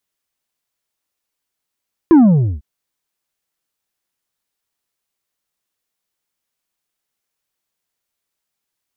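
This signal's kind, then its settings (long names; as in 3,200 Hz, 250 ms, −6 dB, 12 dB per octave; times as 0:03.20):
bass drop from 350 Hz, over 0.50 s, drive 5 dB, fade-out 0.46 s, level −5 dB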